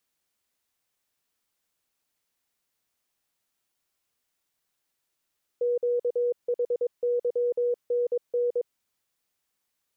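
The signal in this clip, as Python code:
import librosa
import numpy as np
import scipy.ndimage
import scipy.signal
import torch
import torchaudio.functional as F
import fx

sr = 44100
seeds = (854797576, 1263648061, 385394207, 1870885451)

y = fx.morse(sr, text='QHYNN', wpm=22, hz=484.0, level_db=-22.0)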